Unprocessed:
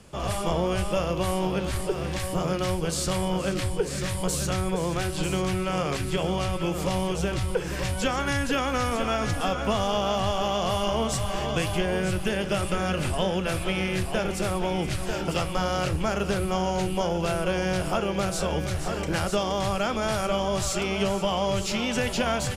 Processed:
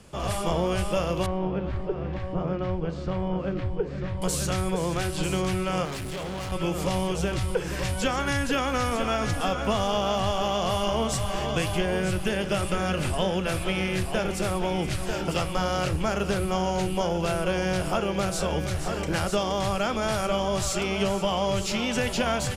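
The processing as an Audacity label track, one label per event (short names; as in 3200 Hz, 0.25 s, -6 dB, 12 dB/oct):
1.260000	4.220000	tape spacing loss at 10 kHz 41 dB
5.850000	6.520000	hard clip -31 dBFS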